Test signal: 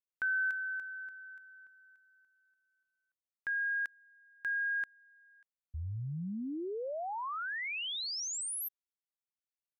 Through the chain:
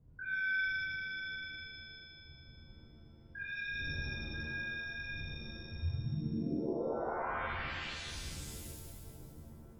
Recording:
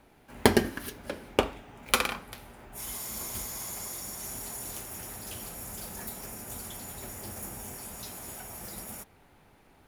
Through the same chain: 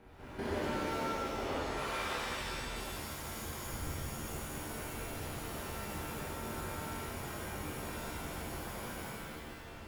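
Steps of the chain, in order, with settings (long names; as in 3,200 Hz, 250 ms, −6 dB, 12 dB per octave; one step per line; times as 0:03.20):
spectrum averaged block by block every 200 ms
wind on the microphone 100 Hz −52 dBFS
downward compressor 2.5 to 1, threshold −47 dBFS
high-shelf EQ 3,700 Hz −12 dB
reverb with rising layers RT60 1.9 s, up +7 semitones, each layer −2 dB, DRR −7 dB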